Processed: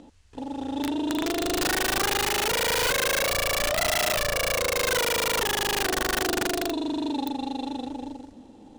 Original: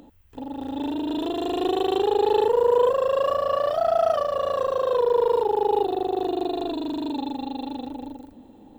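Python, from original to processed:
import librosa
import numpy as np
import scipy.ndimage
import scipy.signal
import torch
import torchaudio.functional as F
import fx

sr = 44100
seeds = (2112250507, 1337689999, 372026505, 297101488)

y = fx.cvsd(x, sr, bps=64000)
y = scipy.signal.sosfilt(scipy.signal.bessel(4, 6000.0, 'lowpass', norm='mag', fs=sr, output='sos'), y)
y = fx.high_shelf(y, sr, hz=3400.0, db=6.5)
y = (np.mod(10.0 ** (19.0 / 20.0) * y + 1.0, 2.0) - 1.0) / 10.0 ** (19.0 / 20.0)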